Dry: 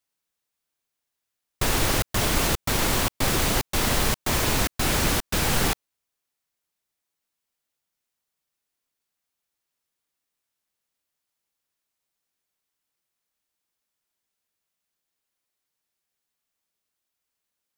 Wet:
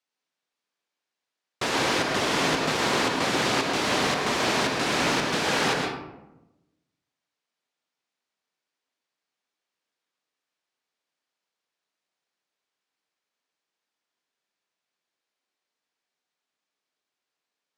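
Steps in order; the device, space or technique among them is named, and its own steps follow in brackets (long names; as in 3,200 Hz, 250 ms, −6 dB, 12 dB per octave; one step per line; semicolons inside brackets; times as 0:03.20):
supermarket ceiling speaker (band-pass filter 230–5,500 Hz; convolution reverb RT60 0.95 s, pre-delay 109 ms, DRR 0.5 dB)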